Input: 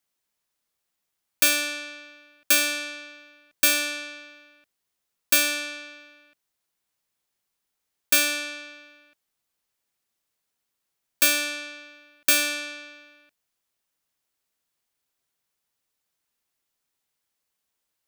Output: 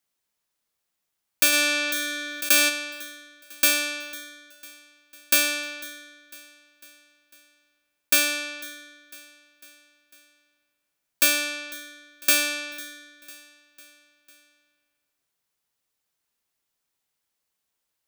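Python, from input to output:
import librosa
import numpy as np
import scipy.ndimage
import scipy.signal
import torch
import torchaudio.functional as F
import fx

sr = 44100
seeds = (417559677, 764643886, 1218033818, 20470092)

p1 = x + fx.echo_feedback(x, sr, ms=500, feedback_pct=57, wet_db=-20.5, dry=0)
y = fx.env_flatten(p1, sr, amount_pct=50, at=(1.52, 2.68), fade=0.02)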